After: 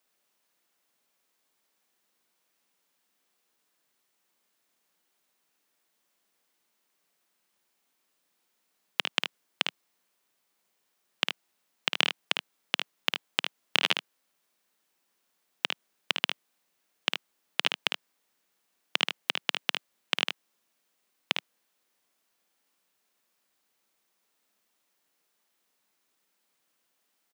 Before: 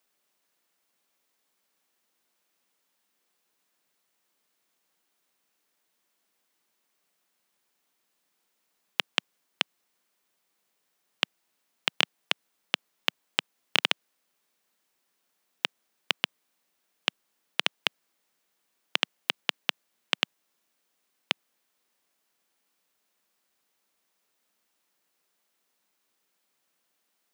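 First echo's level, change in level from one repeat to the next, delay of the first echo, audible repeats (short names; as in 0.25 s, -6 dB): -6.5 dB, no steady repeat, 54 ms, 1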